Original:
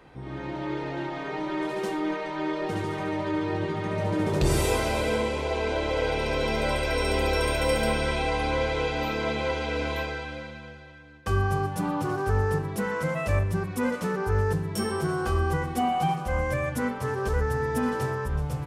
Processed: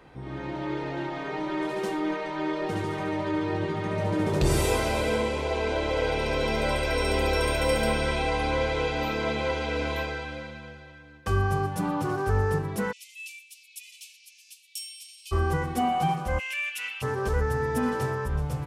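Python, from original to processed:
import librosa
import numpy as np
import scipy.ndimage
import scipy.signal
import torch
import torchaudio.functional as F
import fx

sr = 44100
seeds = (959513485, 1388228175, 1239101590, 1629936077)

y = fx.steep_highpass(x, sr, hz=2400.0, slope=96, at=(12.91, 15.31), fade=0.02)
y = fx.highpass_res(y, sr, hz=2700.0, q=15.0, at=(16.38, 17.01), fade=0.02)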